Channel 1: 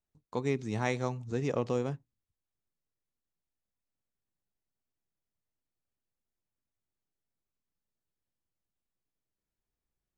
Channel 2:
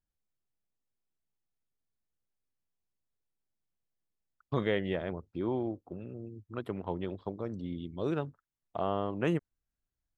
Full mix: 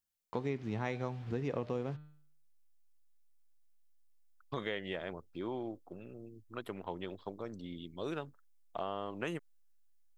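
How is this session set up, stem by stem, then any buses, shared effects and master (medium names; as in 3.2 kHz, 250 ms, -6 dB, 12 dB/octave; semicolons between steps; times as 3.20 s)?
+2.0 dB, 0.00 s, no send, send-on-delta sampling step -48.5 dBFS; low-pass 3.9 kHz 12 dB/octave; de-hum 150.5 Hz, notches 31
-1.5 dB, 0.00 s, no send, tilt EQ +2.5 dB/octave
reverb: none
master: compression 3:1, threshold -34 dBFS, peak gain reduction 8.5 dB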